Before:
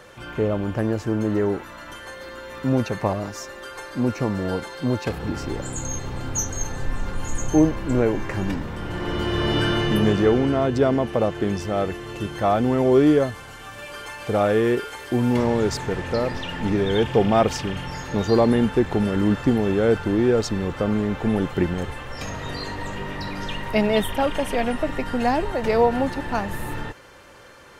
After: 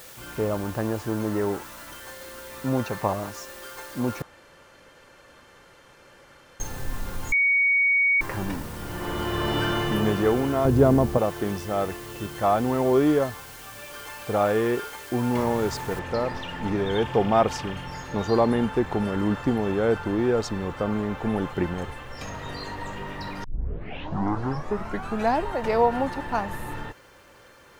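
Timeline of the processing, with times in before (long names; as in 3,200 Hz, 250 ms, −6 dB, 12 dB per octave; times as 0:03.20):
0:04.22–0:06.60: fill with room tone
0:07.32–0:08.21: beep over 2,240 Hz −13.5 dBFS
0:10.65–0:11.18: spectral tilt −3.5 dB per octave
0:15.99: noise floor change −41 dB −63 dB
0:23.44: tape start 1.94 s
whole clip: dynamic equaliser 980 Hz, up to +6 dB, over −37 dBFS, Q 1.1; level −5 dB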